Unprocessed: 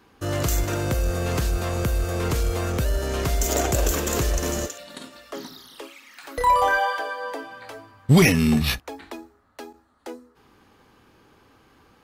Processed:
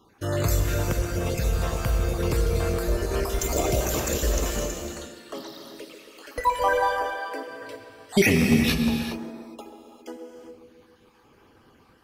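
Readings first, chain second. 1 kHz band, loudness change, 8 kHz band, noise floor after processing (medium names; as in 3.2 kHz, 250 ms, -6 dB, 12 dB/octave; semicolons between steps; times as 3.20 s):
-3.5 dB, -2.0 dB, -2.5 dB, -58 dBFS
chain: random holes in the spectrogram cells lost 37%; band-passed feedback delay 135 ms, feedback 67%, band-pass 330 Hz, level -8 dB; gated-style reverb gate 430 ms flat, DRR 3.5 dB; trim -1.5 dB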